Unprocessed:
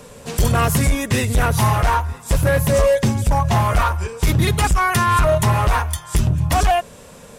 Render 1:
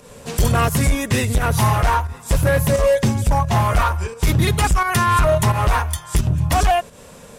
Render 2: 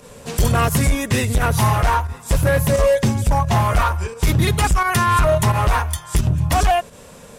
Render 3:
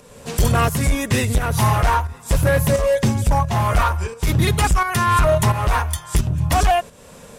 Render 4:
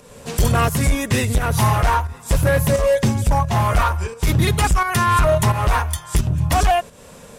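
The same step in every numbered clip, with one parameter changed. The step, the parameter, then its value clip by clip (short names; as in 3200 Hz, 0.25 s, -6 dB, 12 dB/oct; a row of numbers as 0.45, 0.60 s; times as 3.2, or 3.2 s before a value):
pump, release: 152, 82, 393, 266 ms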